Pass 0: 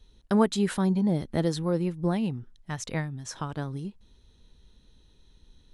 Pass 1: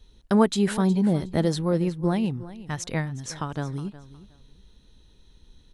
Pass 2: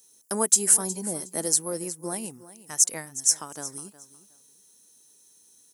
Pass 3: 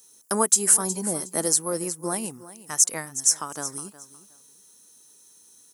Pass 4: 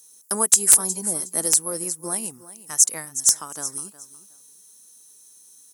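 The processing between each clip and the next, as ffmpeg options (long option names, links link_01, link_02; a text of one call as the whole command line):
ffmpeg -i in.wav -af "aecho=1:1:364|728:0.15|0.0314,volume=3dB" out.wav
ffmpeg -i in.wav -af "highpass=310,aexciter=amount=13.8:drive=8.7:freq=5800,volume=-6dB" out.wav
ffmpeg -i in.wav -filter_complex "[0:a]equalizer=frequency=1200:width_type=o:width=0.68:gain=5.5,asplit=2[link_01][link_02];[link_02]alimiter=limit=-11.5dB:level=0:latency=1:release=220,volume=1dB[link_03];[link_01][link_03]amix=inputs=2:normalize=0,volume=-3dB" out.wav
ffmpeg -i in.wav -af "aemphasis=mode=production:type=cd,aeval=exprs='(mod(0.75*val(0)+1,2)-1)/0.75':channel_layout=same,volume=-3.5dB" out.wav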